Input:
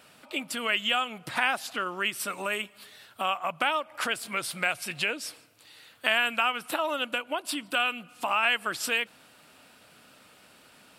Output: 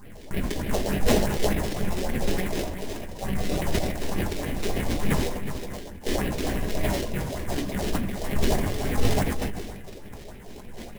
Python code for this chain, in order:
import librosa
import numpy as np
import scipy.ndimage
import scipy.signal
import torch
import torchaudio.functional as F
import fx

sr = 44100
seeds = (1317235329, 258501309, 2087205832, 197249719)

p1 = fx.high_shelf(x, sr, hz=2700.0, db=11.5)
p2 = fx.over_compress(p1, sr, threshold_db=-35.0, ratio=-1.0)
p3 = p1 + (p2 * librosa.db_to_amplitude(1.0))
p4 = fx.sample_hold(p3, sr, seeds[0], rate_hz=1300.0, jitter_pct=20)
p5 = fx.phaser_stages(p4, sr, stages=4, low_hz=120.0, high_hz=1100.0, hz=3.4, feedback_pct=35)
p6 = p5 + 10.0 ** (-8.5 / 20.0) * np.pad(p5, (int(367 * sr / 1000.0), 0))[:len(p5)]
p7 = fx.room_shoebox(p6, sr, seeds[1], volume_m3=170.0, walls='furnished', distance_m=1.3)
p8 = fx.sustainer(p7, sr, db_per_s=38.0)
y = p8 * librosa.db_to_amplitude(-8.0)